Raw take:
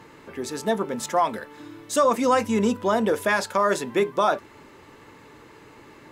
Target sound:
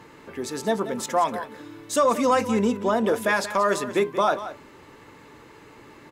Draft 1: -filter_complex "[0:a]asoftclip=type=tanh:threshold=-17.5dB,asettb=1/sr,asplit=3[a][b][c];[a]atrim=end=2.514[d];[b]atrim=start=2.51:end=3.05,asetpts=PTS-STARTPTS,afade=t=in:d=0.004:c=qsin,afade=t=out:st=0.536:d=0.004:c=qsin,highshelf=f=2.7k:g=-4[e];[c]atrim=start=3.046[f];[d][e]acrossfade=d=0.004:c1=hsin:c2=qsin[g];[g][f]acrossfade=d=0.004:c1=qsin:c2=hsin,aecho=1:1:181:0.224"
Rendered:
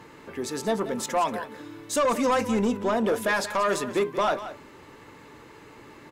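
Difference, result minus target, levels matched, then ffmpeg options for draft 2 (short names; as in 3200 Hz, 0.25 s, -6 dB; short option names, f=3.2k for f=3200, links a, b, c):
soft clip: distortion +17 dB
-filter_complex "[0:a]asoftclip=type=tanh:threshold=-6.5dB,asettb=1/sr,asplit=3[a][b][c];[a]atrim=end=2.514[d];[b]atrim=start=2.51:end=3.05,asetpts=PTS-STARTPTS,afade=t=in:d=0.004:c=qsin,afade=t=out:st=0.536:d=0.004:c=qsin,highshelf=f=2.7k:g=-4[e];[c]atrim=start=3.046[f];[d][e]acrossfade=d=0.004:c1=hsin:c2=qsin[g];[g][f]acrossfade=d=0.004:c1=qsin:c2=hsin,aecho=1:1:181:0.224"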